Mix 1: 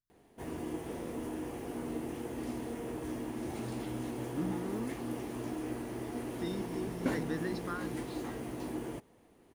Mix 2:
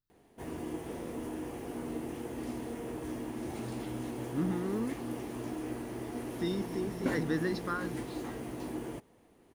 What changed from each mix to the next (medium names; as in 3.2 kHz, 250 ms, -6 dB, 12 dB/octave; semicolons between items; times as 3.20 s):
speech +5.0 dB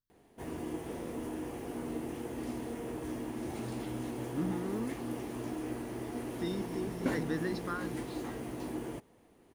speech -3.0 dB